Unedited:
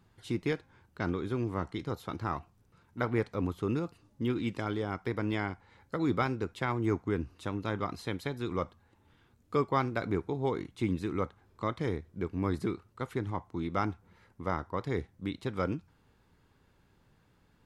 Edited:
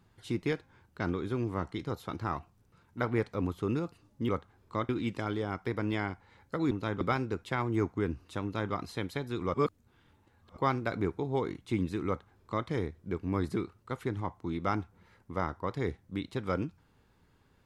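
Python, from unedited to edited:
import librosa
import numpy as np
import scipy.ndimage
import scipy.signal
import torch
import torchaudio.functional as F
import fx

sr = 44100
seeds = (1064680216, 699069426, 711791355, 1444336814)

y = fx.edit(x, sr, fx.duplicate(start_s=7.53, length_s=0.3, to_s=6.11),
    fx.reverse_span(start_s=8.64, length_s=1.03),
    fx.duplicate(start_s=11.17, length_s=0.6, to_s=4.29), tone=tone)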